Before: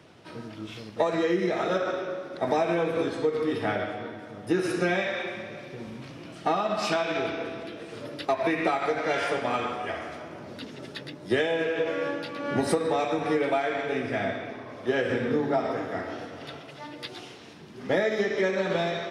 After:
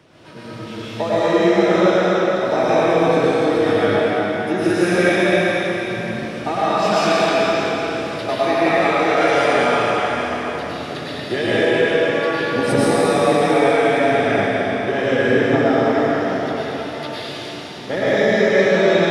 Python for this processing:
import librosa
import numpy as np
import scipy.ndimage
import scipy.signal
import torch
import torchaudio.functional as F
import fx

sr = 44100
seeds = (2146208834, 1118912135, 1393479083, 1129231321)

y = fx.rev_plate(x, sr, seeds[0], rt60_s=3.9, hf_ratio=0.95, predelay_ms=90, drr_db=-10.0)
y = y * 10.0 ** (1.0 / 20.0)